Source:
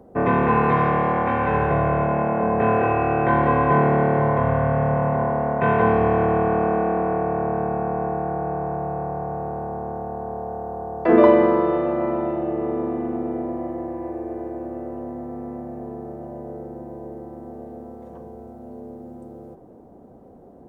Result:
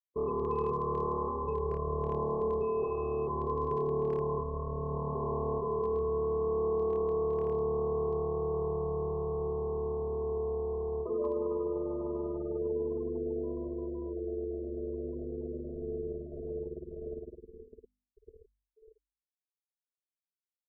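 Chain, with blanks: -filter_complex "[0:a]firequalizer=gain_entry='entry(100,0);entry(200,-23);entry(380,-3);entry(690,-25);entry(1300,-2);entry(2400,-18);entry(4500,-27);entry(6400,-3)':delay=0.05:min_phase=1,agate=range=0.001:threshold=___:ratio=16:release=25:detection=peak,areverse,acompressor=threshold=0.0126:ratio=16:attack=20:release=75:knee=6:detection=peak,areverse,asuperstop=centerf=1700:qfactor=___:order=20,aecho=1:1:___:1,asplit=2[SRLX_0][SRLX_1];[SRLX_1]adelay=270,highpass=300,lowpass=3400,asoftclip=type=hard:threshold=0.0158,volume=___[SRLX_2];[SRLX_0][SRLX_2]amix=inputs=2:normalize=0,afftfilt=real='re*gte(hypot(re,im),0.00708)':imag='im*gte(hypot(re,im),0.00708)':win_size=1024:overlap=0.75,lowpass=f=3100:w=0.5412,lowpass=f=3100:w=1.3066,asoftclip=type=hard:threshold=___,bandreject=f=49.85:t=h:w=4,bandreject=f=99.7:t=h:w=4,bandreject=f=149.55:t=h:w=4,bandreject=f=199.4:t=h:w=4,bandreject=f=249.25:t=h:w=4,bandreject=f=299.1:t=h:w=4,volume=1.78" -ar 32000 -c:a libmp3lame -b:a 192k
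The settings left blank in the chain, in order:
0.00447, 1.4, 4.7, 0.0562, 0.0398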